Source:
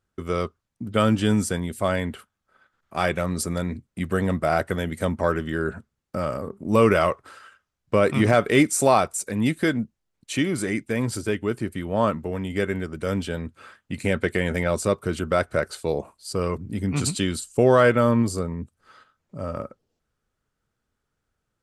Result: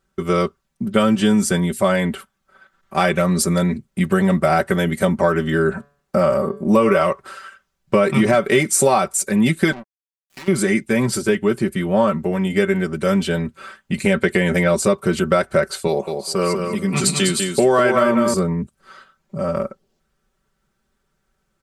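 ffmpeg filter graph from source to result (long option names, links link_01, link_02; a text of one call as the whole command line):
ffmpeg -i in.wav -filter_complex "[0:a]asettb=1/sr,asplit=3[link_01][link_02][link_03];[link_01]atrim=end=5.714[link_04];[link_02]atrim=start=5.71:end=7.03,asetpts=PTS-STARTPTS,afade=type=in:duration=0.004:curve=qsin,afade=type=out:start_time=1.316:duration=0.004:curve=qsin,equalizer=frequency=690:width=0.55:gain=4.5,bandreject=frequency=143.4:width_type=h:width=4,bandreject=frequency=286.8:width_type=h:width=4,bandreject=frequency=430.2:width_type=h:width=4,bandreject=frequency=573.6:width_type=h:width=4,bandreject=frequency=717:width_type=h:width=4,bandreject=frequency=860.4:width_type=h:width=4,bandreject=frequency=1003.8:width_type=h:width=4,bandreject=frequency=1147.2:width_type=h:width=4,bandreject=frequency=1290.6:width_type=h:width=4,bandreject=frequency=1434:width_type=h:width=4,bandreject=frequency=1577.4:width_type=h:width=4,bandreject=frequency=1720.8:width_type=h:width=4,bandreject=frequency=1864.2:width_type=h:width=4,bandreject=frequency=2007.6:width_type=h:width=4,bandreject=frequency=2151:width_type=h:width=4,bandreject=frequency=2294.4:width_type=h:width=4,bandreject=frequency=2437.8:width_type=h:width=4,bandreject=frequency=2581.2:width_type=h:width=4,bandreject=frequency=2724.6:width_type=h:width=4,bandreject=frequency=2868:width_type=h:width=4,bandreject=frequency=3011.4:width_type=h:width=4,bandreject=frequency=3154.8:width_type=h:width=4,bandreject=frequency=3298.2:width_type=h:width=4,bandreject=frequency=3441.6:width_type=h:width=4,bandreject=frequency=3585:width_type=h:width=4,bandreject=frequency=3728.4:width_type=h:width=4,bandreject=frequency=3871.8:width_type=h:width=4,bandreject=frequency=4015.2:width_type=h:width=4,bandreject=frequency=4158.6:width_type=h:width=4,bandreject=frequency=4302:width_type=h:width=4,bandreject=frequency=4445.4:width_type=h:width=4,bandreject=frequency=4588.8:width_type=h:width=4,bandreject=frequency=4732.2:width_type=h:width=4[link_05];[link_03]atrim=start=7.026[link_06];[link_04][link_05]acrossfade=duration=0.004:curve1=hsin:curve2=qsin[link_07];[link_07][link_06]acrossfade=duration=0.004:curve1=qsin:curve2=hsin,asettb=1/sr,asplit=3[link_08][link_09][link_10];[link_08]atrim=end=9.724[link_11];[link_09]atrim=start=9.72:end=10.48,asetpts=PTS-STARTPTS,afade=type=in:duration=0.004:curve=qsin,afade=type=out:start_time=0.756:duration=0.004:curve=qsin,acompressor=threshold=-33dB:ratio=8:attack=3.2:release=140:knee=1:detection=peak,asplit=2[link_12][link_13];[link_13]highpass=frequency=720:poles=1,volume=29dB,asoftclip=type=tanh:threshold=-21.5dB[link_14];[link_12][link_14]amix=inputs=2:normalize=0,lowpass=frequency=1900:poles=1,volume=-6dB,acrusher=bits=3:mix=0:aa=0.5[link_15];[link_10]atrim=start=10.476[link_16];[link_11][link_15]acrossfade=duration=0.004:curve1=hsin:curve2=qsin[link_17];[link_17][link_16]acrossfade=duration=0.004:curve1=qsin:curve2=hsin,asettb=1/sr,asplit=3[link_18][link_19][link_20];[link_18]atrim=end=15.874[link_21];[link_19]atrim=start=15.87:end=18.34,asetpts=PTS-STARTPTS,afade=type=in:duration=0.004:curve=qsin,afade=type=out:start_time=2.466:duration=0.004:curve=qsin,highpass=frequency=270:poles=1,aecho=1:1:199|398|597:0.531|0.0956|0.0172,atrim=end_sample=108927[link_22];[link_20]atrim=start=18.336[link_23];[link_21][link_22]acrossfade=duration=0.004:curve1=hsin:curve2=qsin[link_24];[link_24][link_23]acrossfade=duration=0.004:curve1=qsin:curve2=hsin,aecho=1:1:5.2:0.81,acompressor=threshold=-18dB:ratio=6,volume=6.5dB" out.wav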